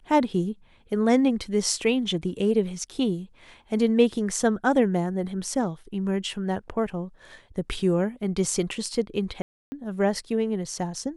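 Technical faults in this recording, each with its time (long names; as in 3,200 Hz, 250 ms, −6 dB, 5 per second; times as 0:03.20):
0:09.42–0:09.72: drop-out 300 ms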